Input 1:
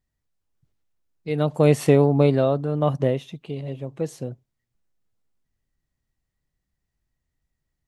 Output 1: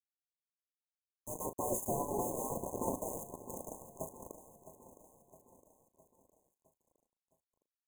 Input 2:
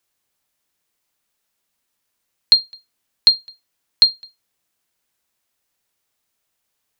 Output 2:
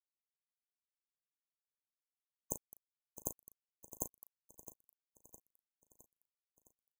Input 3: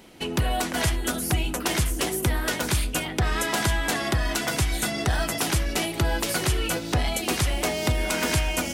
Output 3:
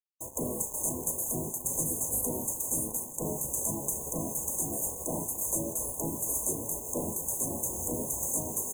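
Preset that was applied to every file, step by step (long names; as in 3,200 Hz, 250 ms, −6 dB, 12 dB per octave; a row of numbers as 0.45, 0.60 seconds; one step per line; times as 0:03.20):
hum removal 268.9 Hz, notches 5
gate on every frequency bin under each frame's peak −15 dB weak
flat-topped bell 1,200 Hz −10 dB
in parallel at +1 dB: downward compressor 4 to 1, threshold −45 dBFS
on the sum: bit reduction 6 bits
linear-phase brick-wall band-stop 1,100–6,200 Hz
double-tracking delay 37 ms −11 dB
on a send: repeating echo 662 ms, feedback 53%, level −13.5 dB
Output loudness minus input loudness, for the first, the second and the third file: −18.0, −31.0, −5.5 LU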